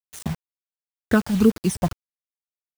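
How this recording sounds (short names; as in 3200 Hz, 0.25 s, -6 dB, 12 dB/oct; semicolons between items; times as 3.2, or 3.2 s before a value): phasing stages 12, 2.1 Hz, lowest notch 380–1000 Hz; a quantiser's noise floor 6-bit, dither none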